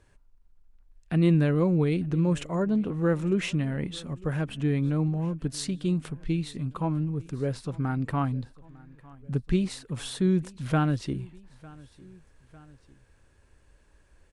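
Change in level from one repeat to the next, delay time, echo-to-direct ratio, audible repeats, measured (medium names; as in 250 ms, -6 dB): -4.5 dB, 902 ms, -21.5 dB, 2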